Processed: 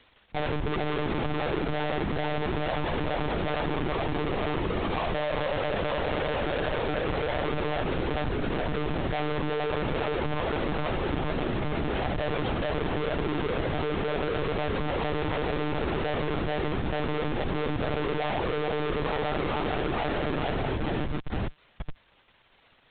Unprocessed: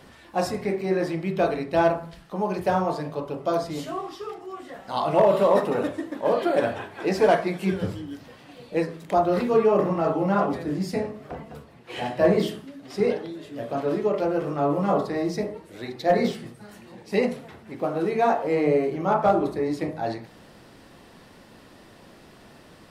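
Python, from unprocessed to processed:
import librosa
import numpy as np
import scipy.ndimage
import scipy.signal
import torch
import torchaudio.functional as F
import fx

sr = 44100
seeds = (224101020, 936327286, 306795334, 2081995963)

y = fx.echo_feedback(x, sr, ms=433, feedback_pct=53, wet_db=-3.0)
y = fx.schmitt(y, sr, flips_db=-33.0)
y = fx.dmg_crackle(y, sr, seeds[0], per_s=490.0, level_db=-37.0)
y = fx.lpc_monotone(y, sr, seeds[1], pitch_hz=150.0, order=16)
y = y * 10.0 ** (-5.0 / 20.0)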